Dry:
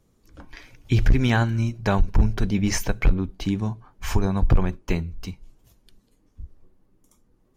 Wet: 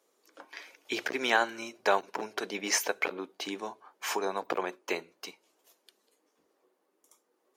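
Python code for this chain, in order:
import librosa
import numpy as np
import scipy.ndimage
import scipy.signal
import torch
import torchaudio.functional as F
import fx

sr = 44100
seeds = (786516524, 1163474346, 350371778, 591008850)

y = scipy.signal.sosfilt(scipy.signal.butter(4, 400.0, 'highpass', fs=sr, output='sos'), x)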